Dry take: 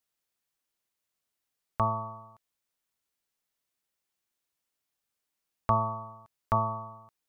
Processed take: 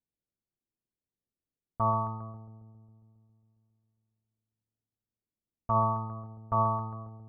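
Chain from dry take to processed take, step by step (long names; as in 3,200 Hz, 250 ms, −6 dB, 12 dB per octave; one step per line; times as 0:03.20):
brickwall limiter −20 dBFS, peak gain reduction 8.5 dB
delay with a low-pass on its return 136 ms, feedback 73%, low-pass 1,500 Hz, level −14 dB
low-pass that shuts in the quiet parts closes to 320 Hz, open at −27.5 dBFS
level +3.5 dB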